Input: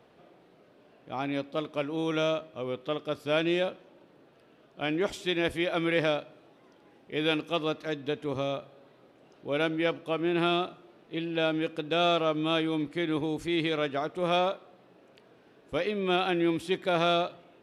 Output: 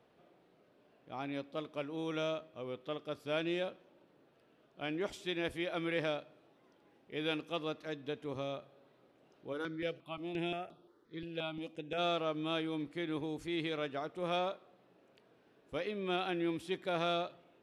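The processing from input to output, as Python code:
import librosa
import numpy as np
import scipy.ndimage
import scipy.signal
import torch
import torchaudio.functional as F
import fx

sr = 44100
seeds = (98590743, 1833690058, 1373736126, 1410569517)

y = fx.phaser_held(x, sr, hz=5.7, low_hz=260.0, high_hz=7100.0, at=(9.52, 11.97), fade=0.02)
y = y * 10.0 ** (-8.5 / 20.0)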